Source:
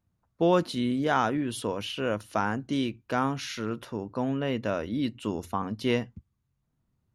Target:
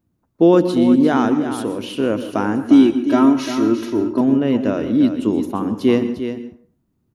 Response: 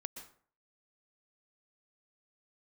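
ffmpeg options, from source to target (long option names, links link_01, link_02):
-filter_complex "[0:a]equalizer=frequency=300:width_type=o:width=1.3:gain=13,asettb=1/sr,asplit=3[link_01][link_02][link_03];[link_01]atrim=end=1.324[link_04];[link_02]atrim=start=1.32:end=1.89,asetpts=PTS-STARTPTS,afade=type=in:duration=0.004:curve=qsin,afade=type=out:start_time=0.566:duration=0.004:curve=qsin,acompressor=threshold=-21dB:ratio=6[link_05];[link_03]atrim=start=1.886[link_06];[link_04][link_05]acrossfade=duration=0.004:curve1=hsin:curve2=qsin[link_07];[link_07][link_06]acrossfade=duration=0.004:curve1=qsin:curve2=hsin,asettb=1/sr,asplit=3[link_08][link_09][link_10];[link_08]atrim=end=2.644[link_11];[link_09]atrim=start=2.64:end=4.21,asetpts=PTS-STARTPTS,afade=type=in:duration=0.004:curve=qsin,afade=type=out:start_time=1.566:duration=0.004:curve=qsin,aecho=1:1:3.1:0.94,atrim=end_sample=69237[link_12];[link_10]atrim=start=4.206[link_13];[link_11][link_12]acrossfade=duration=0.004:curve1=hsin:curve2=qsin[link_14];[link_14][link_13]acrossfade=duration=0.004:curve1=qsin:curve2=hsin,aecho=1:1:350:0.335,asplit=2[link_15][link_16];[1:a]atrim=start_sample=2205,highshelf=frequency=10000:gain=10[link_17];[link_16][link_17]afir=irnorm=-1:irlink=0,volume=4dB[link_18];[link_15][link_18]amix=inputs=2:normalize=0,volume=-4dB"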